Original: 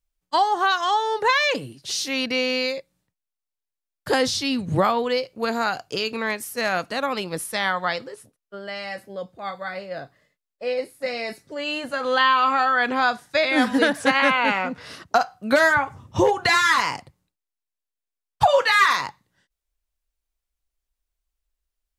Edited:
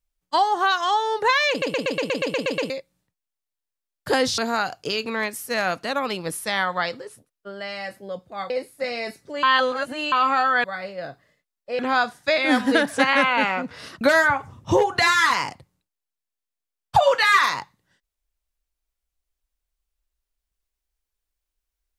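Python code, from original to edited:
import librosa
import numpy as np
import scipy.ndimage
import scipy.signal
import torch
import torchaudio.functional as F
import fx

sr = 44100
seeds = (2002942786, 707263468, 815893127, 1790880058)

y = fx.edit(x, sr, fx.stutter_over(start_s=1.5, slice_s=0.12, count=10),
    fx.cut(start_s=4.38, length_s=1.07),
    fx.move(start_s=9.57, length_s=1.15, to_s=12.86),
    fx.reverse_span(start_s=11.65, length_s=0.69),
    fx.cut(start_s=15.08, length_s=0.4), tone=tone)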